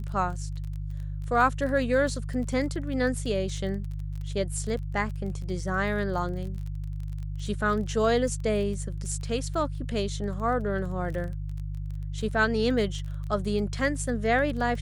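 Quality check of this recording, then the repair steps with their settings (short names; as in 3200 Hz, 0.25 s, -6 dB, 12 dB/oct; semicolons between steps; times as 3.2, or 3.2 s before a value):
crackle 24/s -35 dBFS
hum 50 Hz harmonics 3 -33 dBFS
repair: de-click; de-hum 50 Hz, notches 3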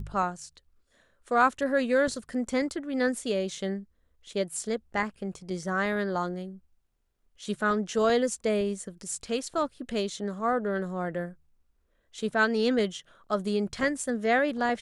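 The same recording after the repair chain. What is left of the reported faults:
none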